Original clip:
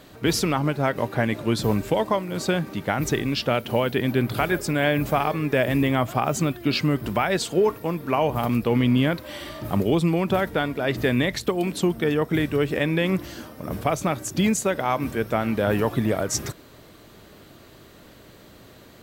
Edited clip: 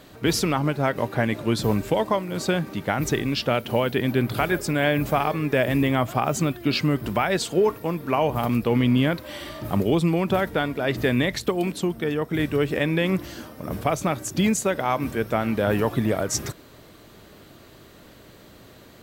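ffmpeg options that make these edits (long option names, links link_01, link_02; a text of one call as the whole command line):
ffmpeg -i in.wav -filter_complex "[0:a]asplit=3[link_01][link_02][link_03];[link_01]atrim=end=11.722[link_04];[link_02]atrim=start=11.718:end=12.392,asetpts=PTS-STARTPTS,volume=-3dB[link_05];[link_03]atrim=start=12.388[link_06];[link_04][link_05]acrossfade=duration=0.004:curve1=hsin:curve2=hsin[link_07];[link_07][link_06]acrossfade=duration=0.004:curve1=hsin:curve2=hsin" out.wav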